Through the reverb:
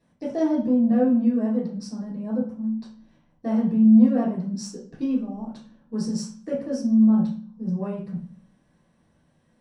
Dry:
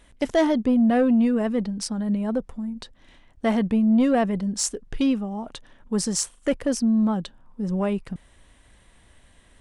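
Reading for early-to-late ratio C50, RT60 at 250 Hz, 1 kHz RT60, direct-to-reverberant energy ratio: 5.0 dB, 0.80 s, 0.40 s, -9.0 dB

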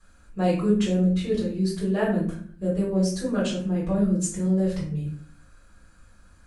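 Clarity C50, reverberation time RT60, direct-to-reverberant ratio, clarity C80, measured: 5.0 dB, 0.50 s, -9.0 dB, 9.5 dB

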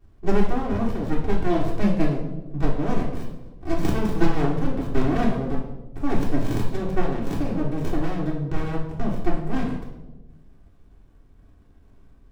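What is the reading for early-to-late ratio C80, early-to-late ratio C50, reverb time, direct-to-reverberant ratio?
8.0 dB, 5.0 dB, 1.1 s, -4.0 dB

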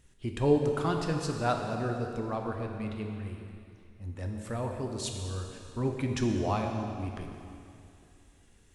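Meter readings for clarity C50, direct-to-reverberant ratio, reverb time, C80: 3.5 dB, 2.5 dB, 2.6 s, 4.5 dB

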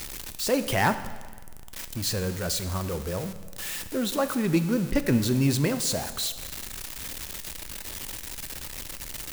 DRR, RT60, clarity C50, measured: 10.0 dB, 1.4 s, 12.0 dB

